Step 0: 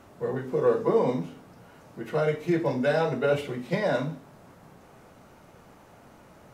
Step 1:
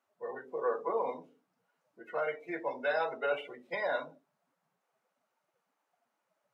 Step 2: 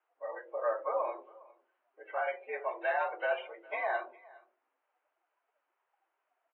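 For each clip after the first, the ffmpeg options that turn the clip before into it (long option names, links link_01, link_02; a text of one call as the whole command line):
ffmpeg -i in.wav -af "afftdn=noise_reduction=23:noise_floor=-38,highpass=730,volume=-2dB" out.wav
ffmpeg -i in.wav -af "highpass=frequency=270:width_type=q:width=0.5412,highpass=frequency=270:width_type=q:width=1.307,lowpass=frequency=2900:width_type=q:width=0.5176,lowpass=frequency=2900:width_type=q:width=0.7071,lowpass=frequency=2900:width_type=q:width=1.932,afreqshift=91,aecho=1:1:409:0.0708" -ar 24000 -c:a aac -b:a 24k out.aac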